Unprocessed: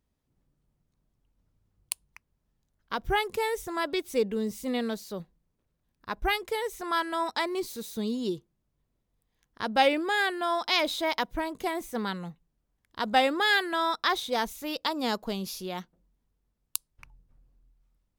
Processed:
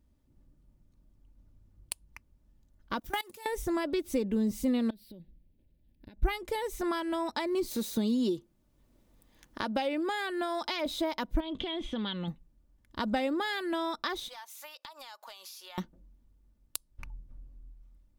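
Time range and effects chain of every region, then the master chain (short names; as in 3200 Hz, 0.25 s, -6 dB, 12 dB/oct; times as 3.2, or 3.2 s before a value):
2.99–3.46 G.711 law mismatch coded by mu + tilt +3.5 dB/oct + level quantiser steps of 24 dB
4.9–6.23 dynamic EQ 650 Hz, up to -6 dB, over -48 dBFS, Q 0.75 + compressor 12:1, threshold -50 dBFS + fixed phaser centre 2900 Hz, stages 4
7.71–10.86 low shelf 250 Hz -8 dB + three-band squash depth 40%
11.4–12.28 compressor, threshold -37 dBFS + synth low-pass 3300 Hz, resonance Q 14
14.28–15.78 HPF 850 Hz 24 dB/oct + compressor 12:1, threshold -44 dBFS
whole clip: comb 3.4 ms, depth 42%; compressor 4:1, threshold -33 dBFS; low shelf 410 Hz +11 dB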